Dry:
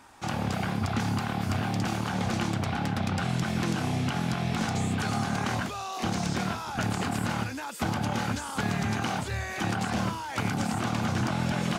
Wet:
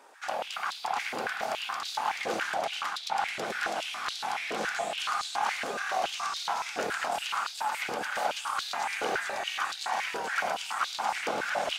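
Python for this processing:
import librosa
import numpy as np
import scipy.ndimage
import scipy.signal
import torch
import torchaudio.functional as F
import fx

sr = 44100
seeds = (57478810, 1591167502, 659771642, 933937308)

y = fx.echo_feedback(x, sr, ms=432, feedback_pct=45, wet_db=-3)
y = fx.filter_held_highpass(y, sr, hz=7.1, low_hz=470.0, high_hz=3900.0)
y = y * 10.0 ** (-4.0 / 20.0)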